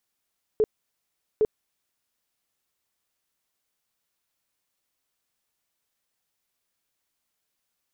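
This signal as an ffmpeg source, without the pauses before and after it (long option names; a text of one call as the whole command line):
ffmpeg -f lavfi -i "aevalsrc='0.15*sin(2*PI*431*mod(t,0.81))*lt(mod(t,0.81),17/431)':duration=1.62:sample_rate=44100" out.wav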